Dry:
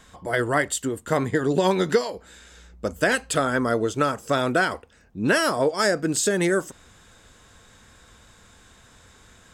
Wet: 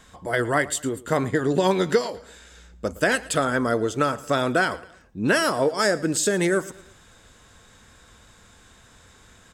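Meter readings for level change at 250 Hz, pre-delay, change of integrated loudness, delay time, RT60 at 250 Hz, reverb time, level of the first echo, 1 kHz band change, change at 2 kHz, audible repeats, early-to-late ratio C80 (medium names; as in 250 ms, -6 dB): 0.0 dB, no reverb, 0.0 dB, 113 ms, no reverb, no reverb, -20.0 dB, 0.0 dB, 0.0 dB, 3, no reverb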